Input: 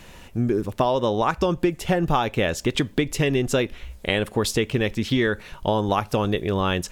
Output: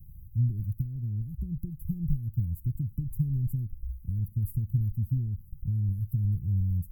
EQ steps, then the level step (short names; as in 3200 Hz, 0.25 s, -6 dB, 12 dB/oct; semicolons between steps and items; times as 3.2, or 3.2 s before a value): inverse Chebyshev band-stop 640–4500 Hz, stop band 80 dB; low shelf 61 Hz -6.5 dB; +6.0 dB